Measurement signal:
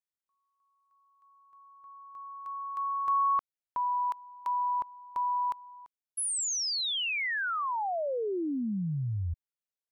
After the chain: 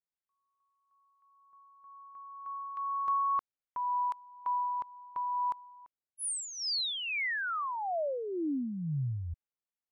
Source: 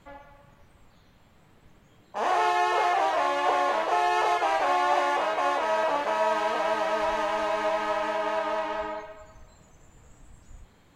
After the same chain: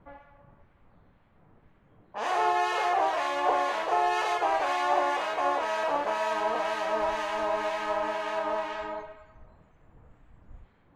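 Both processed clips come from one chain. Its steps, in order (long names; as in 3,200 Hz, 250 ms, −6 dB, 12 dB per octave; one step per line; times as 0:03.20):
two-band tremolo in antiphase 2 Hz, depth 50%, crossover 1,400 Hz
low-pass that shuts in the quiet parts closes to 1,600 Hz, open at −27.5 dBFS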